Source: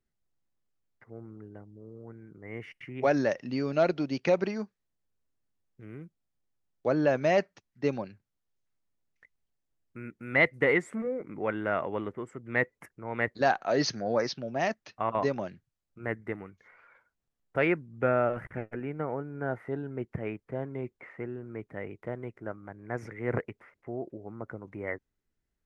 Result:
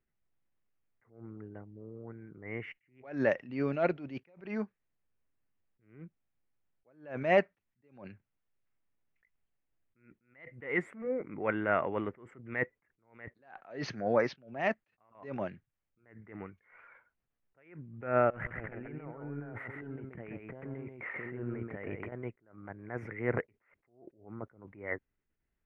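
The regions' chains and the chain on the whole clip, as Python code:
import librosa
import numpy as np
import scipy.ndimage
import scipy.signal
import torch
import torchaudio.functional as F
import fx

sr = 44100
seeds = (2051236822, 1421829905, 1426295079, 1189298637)

y = fx.chain(x, sr, fx.over_compress(threshold_db=-44.0, ratio=-1.0),
    fx.echo_single(ms=132, db=-3.5), at=(18.3, 22.12))
y = fx.high_shelf_res(y, sr, hz=3500.0, db=-12.5, q=1.5)
y = fx.attack_slew(y, sr, db_per_s=130.0)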